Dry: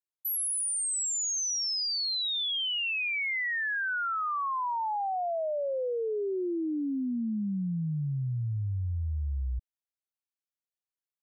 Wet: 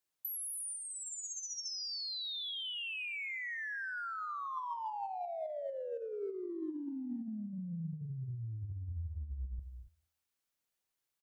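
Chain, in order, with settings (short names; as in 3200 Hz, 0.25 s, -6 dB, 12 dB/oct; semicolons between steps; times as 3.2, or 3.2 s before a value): speakerphone echo 0.19 s, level -18 dB; limiter -39 dBFS, peak gain reduction 11.5 dB; de-hum 79.78 Hz, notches 13; 0.74–1.7 comb 4.2 ms, depth 61%; non-linear reverb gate 0.3 s rising, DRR 10.5 dB; negative-ratio compressor -44 dBFS, ratio -0.5; gain +4.5 dB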